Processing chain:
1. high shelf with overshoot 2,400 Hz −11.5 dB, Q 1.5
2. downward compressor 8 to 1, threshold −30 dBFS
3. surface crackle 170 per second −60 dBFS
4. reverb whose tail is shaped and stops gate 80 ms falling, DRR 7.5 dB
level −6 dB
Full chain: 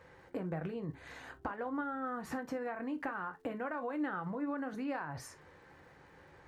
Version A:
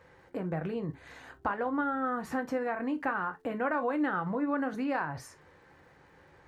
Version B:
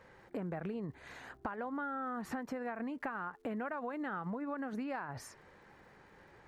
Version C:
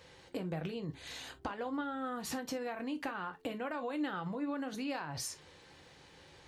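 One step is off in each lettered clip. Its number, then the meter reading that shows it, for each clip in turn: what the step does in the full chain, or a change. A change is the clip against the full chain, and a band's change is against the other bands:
2, average gain reduction 4.0 dB
4, change in integrated loudness −1.0 LU
1, 4 kHz band +12.5 dB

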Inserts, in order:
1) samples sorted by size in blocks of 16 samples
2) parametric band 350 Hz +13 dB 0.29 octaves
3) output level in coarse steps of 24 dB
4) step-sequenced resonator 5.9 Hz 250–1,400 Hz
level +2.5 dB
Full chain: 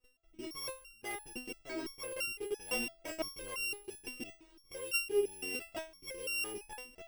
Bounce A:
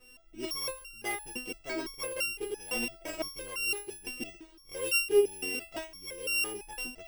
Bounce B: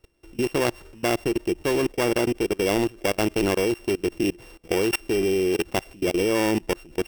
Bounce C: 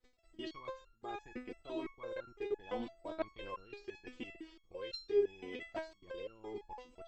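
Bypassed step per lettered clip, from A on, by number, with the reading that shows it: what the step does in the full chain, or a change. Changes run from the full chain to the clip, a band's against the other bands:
3, change in momentary loudness spread +2 LU
4, 125 Hz band +15.0 dB
1, distortion level −5 dB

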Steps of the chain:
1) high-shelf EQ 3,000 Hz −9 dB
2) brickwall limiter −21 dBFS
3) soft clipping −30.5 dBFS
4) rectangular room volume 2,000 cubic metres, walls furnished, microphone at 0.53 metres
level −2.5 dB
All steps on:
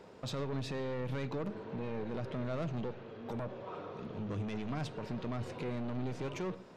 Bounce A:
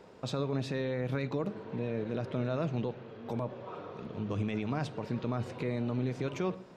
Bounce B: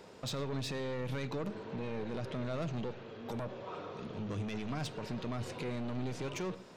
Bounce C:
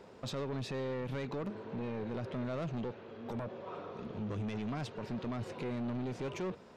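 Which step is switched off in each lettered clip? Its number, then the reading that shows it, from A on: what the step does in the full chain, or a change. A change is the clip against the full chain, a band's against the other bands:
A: 3, distortion level −10 dB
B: 1, 4 kHz band +4.5 dB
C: 4, echo-to-direct ratio −14.0 dB to none audible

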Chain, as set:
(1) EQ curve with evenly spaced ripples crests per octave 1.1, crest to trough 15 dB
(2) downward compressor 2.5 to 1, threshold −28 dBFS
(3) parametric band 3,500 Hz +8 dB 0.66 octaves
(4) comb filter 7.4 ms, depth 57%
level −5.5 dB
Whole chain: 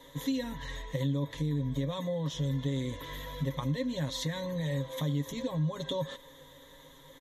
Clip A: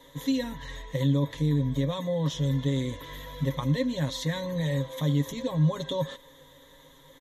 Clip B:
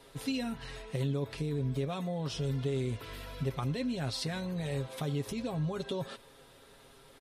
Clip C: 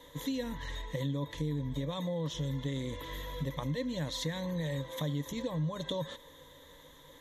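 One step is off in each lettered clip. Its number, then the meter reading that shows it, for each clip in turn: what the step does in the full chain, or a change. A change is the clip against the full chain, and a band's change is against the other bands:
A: 2, change in momentary loudness spread −7 LU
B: 1, change in momentary loudness spread −11 LU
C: 4, 125 Hz band −2.0 dB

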